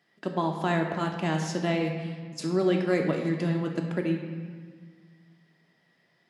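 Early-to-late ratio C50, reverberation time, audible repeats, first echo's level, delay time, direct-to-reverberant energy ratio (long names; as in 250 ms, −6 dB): 5.0 dB, 1.6 s, no echo audible, no echo audible, no echo audible, 2.0 dB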